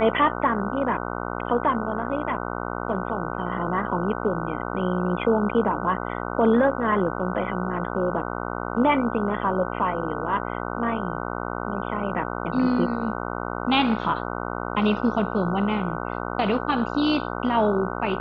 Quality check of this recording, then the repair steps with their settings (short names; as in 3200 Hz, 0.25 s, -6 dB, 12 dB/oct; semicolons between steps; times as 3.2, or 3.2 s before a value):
buzz 60 Hz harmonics 25 -30 dBFS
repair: de-hum 60 Hz, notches 25